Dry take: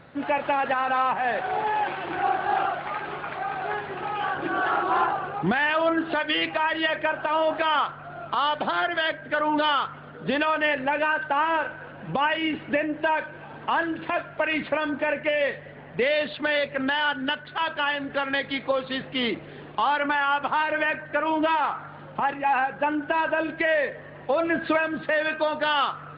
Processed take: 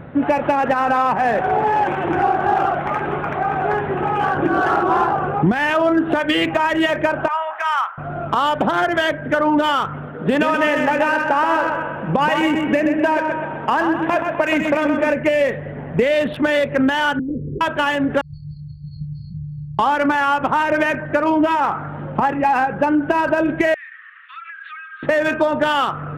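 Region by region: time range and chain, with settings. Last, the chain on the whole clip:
7.28–7.98 HPF 970 Hz 24 dB/oct + air absorption 350 m
10.06–15.12 low shelf 220 Hz -7.5 dB + feedback echo 0.127 s, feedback 52%, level -6 dB
17.19–17.61 Chebyshev low-pass 510 Hz, order 8 + low shelf 69 Hz +10.5 dB + negative-ratio compressor -37 dBFS
18.21–19.79 brick-wall FIR band-stop 170–4200 Hz + high shelf 3700 Hz +6.5 dB + doubler 26 ms -5 dB
23.74–25.03 steep high-pass 1200 Hz 96 dB/oct + compressor 12:1, threshold -38 dBFS
whole clip: Wiener smoothing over 9 samples; low shelf 490 Hz +10 dB; compressor 4:1, threshold -21 dBFS; gain +7.5 dB

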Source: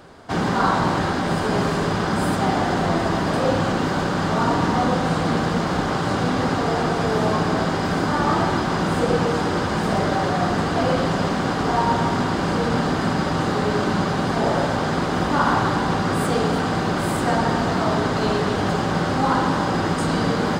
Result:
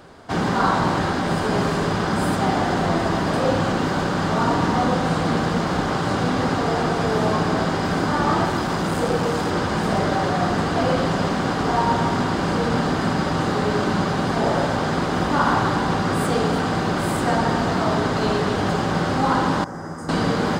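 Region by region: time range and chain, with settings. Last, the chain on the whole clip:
8.45–9.51 high shelf 10000 Hz +10 dB + core saturation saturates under 510 Hz
19.64–20.09 band shelf 3200 Hz -15.5 dB 1.1 oct + resonator 80 Hz, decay 1.1 s, mix 80%
whole clip: dry

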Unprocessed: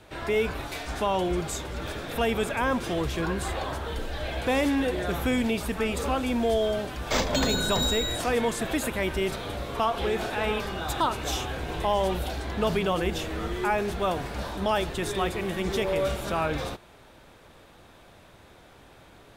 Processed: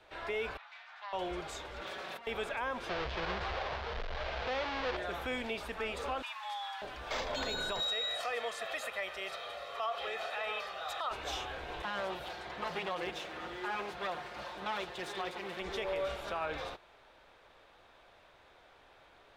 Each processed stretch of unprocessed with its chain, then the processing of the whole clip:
0.57–1.13 self-modulated delay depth 0.16 ms + Bessel high-pass 1400 Hz, order 6 + tape spacing loss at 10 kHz 27 dB
1.81–2.27 minimum comb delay 5.3 ms + HPF 96 Hz + negative-ratio compressor -37 dBFS
2.89–4.97 half-waves squared off + LPF 5000 Hz 24 dB/oct + bell 300 Hz -12.5 dB 0.24 oct
6.22–6.82 steep high-pass 760 Hz + frequency shift +150 Hz
7.8–11.11 HPF 700 Hz 6 dB/oct + comb 1.6 ms, depth 61%
11.82–15.6 minimum comb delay 5.6 ms + HPF 70 Hz
whole clip: three-band isolator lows -16 dB, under 430 Hz, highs -14 dB, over 5100 Hz; limiter -21.5 dBFS; low shelf 67 Hz +11.5 dB; gain -5.5 dB

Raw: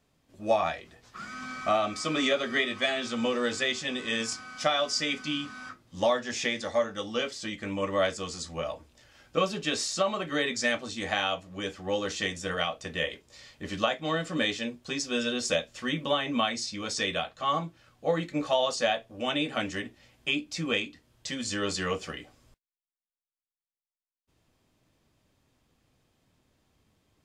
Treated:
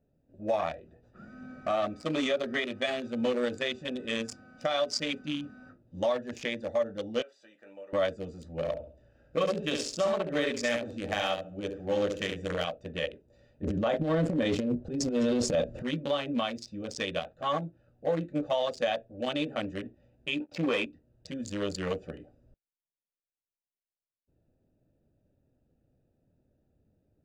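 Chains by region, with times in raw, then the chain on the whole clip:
7.22–7.93 HPF 890 Hz + compressor 4:1, threshold -36 dBFS
8.55–12.65 overloaded stage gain 18 dB + feedback echo 68 ms, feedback 33%, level -4.5 dB
13.63–15.83 tilt shelf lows +7 dB, about 1300 Hz + transient shaper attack -9 dB, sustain +11 dB
20.4–20.86 sample leveller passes 3 + band-pass 890 Hz, Q 0.53
whole clip: Wiener smoothing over 41 samples; bell 570 Hz +5.5 dB 0.4 oct; limiter -19 dBFS

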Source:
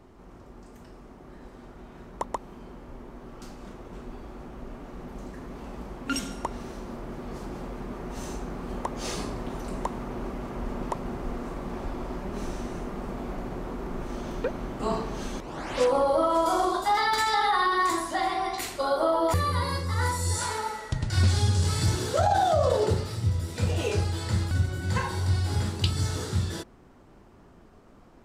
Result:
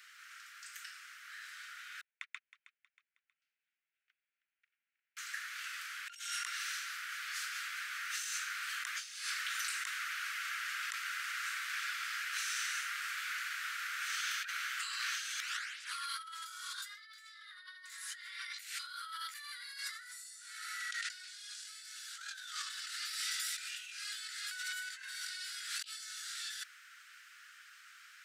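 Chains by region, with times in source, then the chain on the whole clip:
2.01–5.17 gate -34 dBFS, range -42 dB + band-pass 2400 Hz, Q 2.3 + feedback echo 0.317 s, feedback 38%, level -15.5 dB
whole clip: steep high-pass 1400 Hz 72 dB/oct; negative-ratio compressor -49 dBFS, ratio -1; gain +5 dB

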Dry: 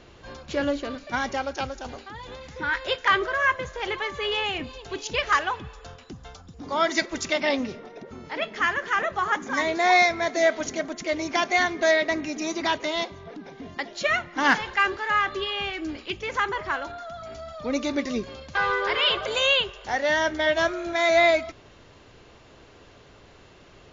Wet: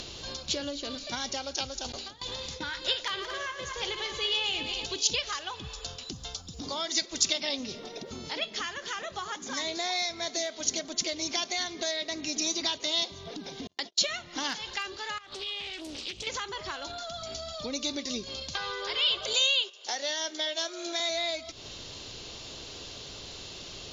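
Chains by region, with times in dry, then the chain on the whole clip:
1.92–4.86 regenerating reverse delay 0.113 s, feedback 60%, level -8 dB + gate with hold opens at -28 dBFS, closes at -38 dBFS
13.67–14.16 gate -39 dBFS, range -43 dB + HPF 87 Hz
15.18–16.27 compressor 5:1, threshold -38 dBFS + Doppler distortion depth 0.58 ms
19.33–21 HPF 270 Hz 24 dB/oct + high shelf 5900 Hz +5.5 dB + gate -37 dBFS, range -10 dB
whole clip: compressor 4:1, threshold -31 dBFS; resonant high shelf 2700 Hz +12.5 dB, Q 1.5; upward compressor, threshold -32 dBFS; gain -2.5 dB

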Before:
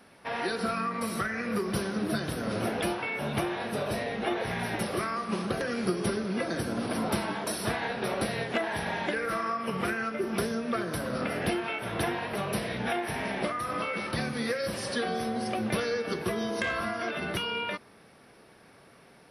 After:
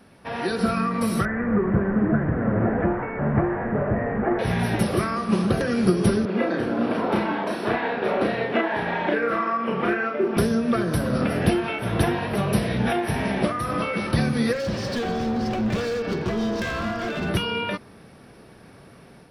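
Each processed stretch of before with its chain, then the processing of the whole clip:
1.25–4.39 delta modulation 64 kbps, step -28 dBFS + elliptic low-pass 1900 Hz, stop band 60 dB
6.25–10.37 three-band isolator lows -18 dB, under 230 Hz, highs -21 dB, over 3400 Hz + doubler 34 ms -2.5 dB
14.53–17.29 LPF 6200 Hz 24 dB/oct + hard clip -30.5 dBFS
whole clip: low shelf 290 Hz +11 dB; notch 2100 Hz, Q 29; AGC gain up to 4 dB

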